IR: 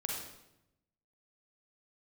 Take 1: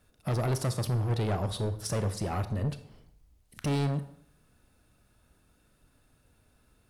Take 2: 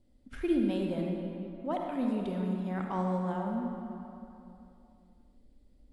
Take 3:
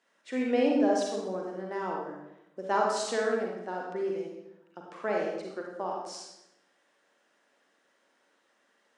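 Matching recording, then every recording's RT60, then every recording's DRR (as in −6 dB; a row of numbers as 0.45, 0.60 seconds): 3; 0.60, 2.9, 0.85 seconds; 10.5, 0.5, −1.5 decibels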